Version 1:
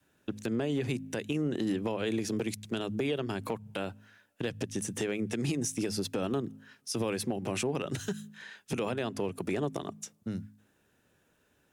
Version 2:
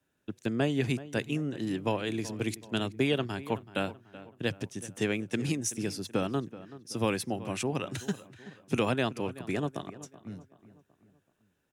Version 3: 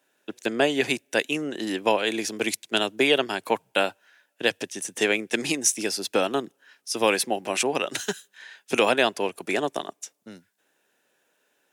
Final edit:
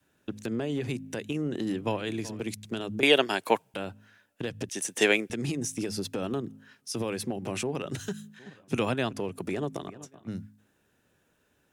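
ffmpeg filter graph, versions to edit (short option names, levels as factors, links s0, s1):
-filter_complex "[1:a]asplit=3[s0][s1][s2];[2:a]asplit=2[s3][s4];[0:a]asplit=6[s5][s6][s7][s8][s9][s10];[s5]atrim=end=1.812[s11];[s0]atrim=start=1.808:end=2.412[s12];[s6]atrim=start=2.408:end=3.032[s13];[s3]atrim=start=3.028:end=3.742[s14];[s7]atrim=start=3.738:end=4.692[s15];[s4]atrim=start=4.688:end=5.302[s16];[s8]atrim=start=5.298:end=8.392[s17];[s1]atrim=start=8.388:end=9.132[s18];[s9]atrim=start=9.128:end=9.882[s19];[s2]atrim=start=9.878:end=10.282[s20];[s10]atrim=start=10.278[s21];[s11][s12]acrossfade=d=0.004:c1=hsin:c2=hsin[s22];[s22][s13]acrossfade=d=0.004:c1=hsin:c2=hsin[s23];[s23][s14]acrossfade=d=0.004:c1=hsin:c2=hsin[s24];[s24][s15]acrossfade=d=0.004:c1=hsin:c2=hsin[s25];[s25][s16]acrossfade=d=0.004:c1=hsin:c2=hsin[s26];[s26][s17]acrossfade=d=0.004:c1=hsin:c2=hsin[s27];[s27][s18]acrossfade=d=0.004:c1=hsin:c2=hsin[s28];[s28][s19]acrossfade=d=0.004:c1=hsin:c2=hsin[s29];[s29][s20]acrossfade=d=0.004:c1=hsin:c2=hsin[s30];[s30][s21]acrossfade=d=0.004:c1=hsin:c2=hsin"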